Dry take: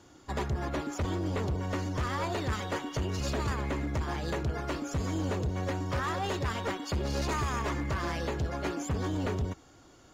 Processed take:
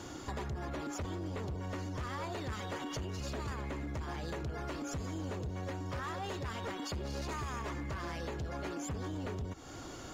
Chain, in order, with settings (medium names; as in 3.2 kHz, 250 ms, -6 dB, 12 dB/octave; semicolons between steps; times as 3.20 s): peak limiter -34.5 dBFS, peak gain reduction 8.5 dB; compression 4:1, threshold -50 dBFS, peak gain reduction 11.5 dB; trim +11 dB